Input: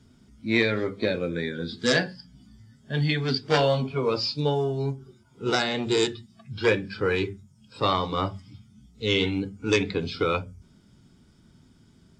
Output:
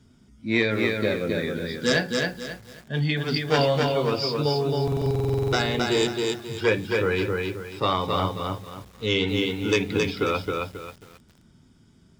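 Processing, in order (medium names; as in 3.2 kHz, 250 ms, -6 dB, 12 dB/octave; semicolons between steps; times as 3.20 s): band-stop 4.2 kHz, Q 9.9; buffer glitch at 4.83 s, samples 2048, times 14; bit-crushed delay 269 ms, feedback 35%, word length 8-bit, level -3 dB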